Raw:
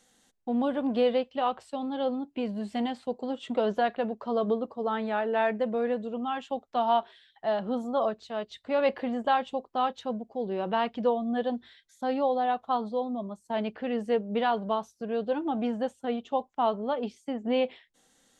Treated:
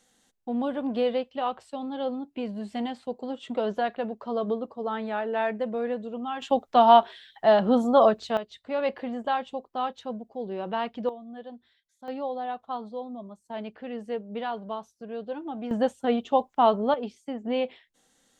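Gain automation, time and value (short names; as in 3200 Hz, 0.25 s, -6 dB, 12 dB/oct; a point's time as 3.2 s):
-1 dB
from 6.42 s +9 dB
from 8.37 s -2 dB
from 11.09 s -12.5 dB
from 12.08 s -5.5 dB
from 15.71 s +6 dB
from 16.94 s -1 dB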